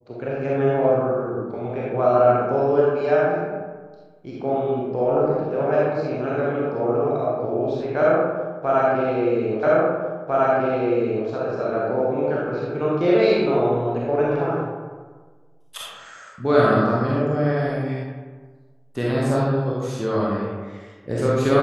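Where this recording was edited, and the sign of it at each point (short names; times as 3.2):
9.63 repeat of the last 1.65 s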